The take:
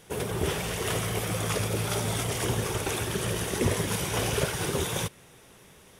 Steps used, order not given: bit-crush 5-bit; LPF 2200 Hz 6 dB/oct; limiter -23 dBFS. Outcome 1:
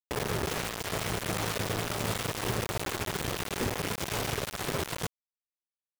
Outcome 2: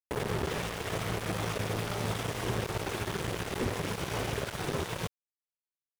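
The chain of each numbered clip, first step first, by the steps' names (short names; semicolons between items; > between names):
limiter > LPF > bit-crush; limiter > bit-crush > LPF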